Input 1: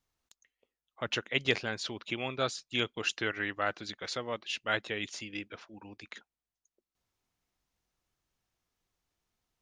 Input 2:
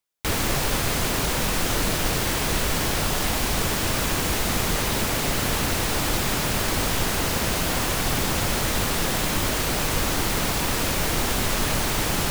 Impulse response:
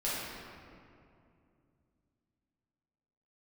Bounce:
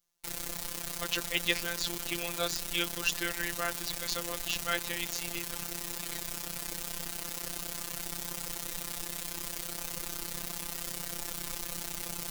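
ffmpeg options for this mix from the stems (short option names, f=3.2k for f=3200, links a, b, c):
-filter_complex "[0:a]volume=0dB[a];[1:a]tremolo=f=32:d=0.919,volume=-13dB[b];[a][b]amix=inputs=2:normalize=0,afftfilt=real='hypot(re,im)*cos(PI*b)':imag='0':win_size=1024:overlap=0.75,highshelf=f=4.1k:g=12"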